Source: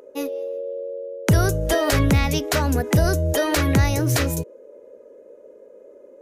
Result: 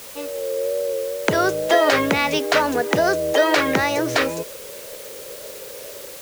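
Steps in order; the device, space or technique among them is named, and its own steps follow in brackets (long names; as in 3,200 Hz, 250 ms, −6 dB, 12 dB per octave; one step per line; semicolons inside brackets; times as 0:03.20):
dictaphone (band-pass filter 390–4,000 Hz; automatic gain control gain up to 11 dB; tape wow and flutter; white noise bed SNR 17 dB)
level −2.5 dB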